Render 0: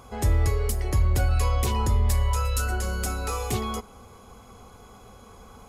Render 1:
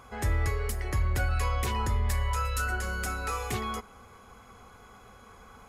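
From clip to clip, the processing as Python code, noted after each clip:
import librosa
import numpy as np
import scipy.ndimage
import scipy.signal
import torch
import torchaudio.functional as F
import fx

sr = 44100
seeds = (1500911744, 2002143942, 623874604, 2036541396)

y = fx.peak_eq(x, sr, hz=1700.0, db=10.0, octaves=1.2)
y = y * librosa.db_to_amplitude(-6.0)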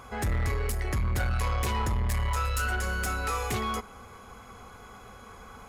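y = 10.0 ** (-28.0 / 20.0) * np.tanh(x / 10.0 ** (-28.0 / 20.0))
y = y * librosa.db_to_amplitude(4.5)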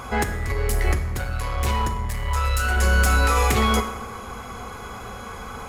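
y = fx.over_compress(x, sr, threshold_db=-30.0, ratio=-0.5)
y = fx.rev_plate(y, sr, seeds[0], rt60_s=1.1, hf_ratio=0.75, predelay_ms=0, drr_db=7.0)
y = y * librosa.db_to_amplitude(8.5)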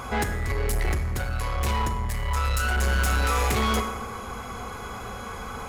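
y = 10.0 ** (-19.5 / 20.0) * np.tanh(x / 10.0 ** (-19.5 / 20.0))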